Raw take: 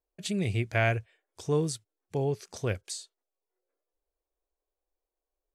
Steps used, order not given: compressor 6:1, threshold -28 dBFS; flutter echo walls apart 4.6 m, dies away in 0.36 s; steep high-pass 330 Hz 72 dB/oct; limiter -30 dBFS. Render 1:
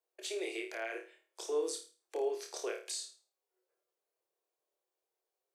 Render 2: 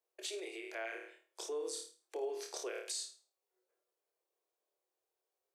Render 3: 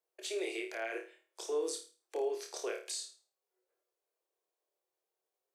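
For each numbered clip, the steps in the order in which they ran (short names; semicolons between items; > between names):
compressor > steep high-pass > limiter > flutter echo; flutter echo > compressor > limiter > steep high-pass; steep high-pass > limiter > flutter echo > compressor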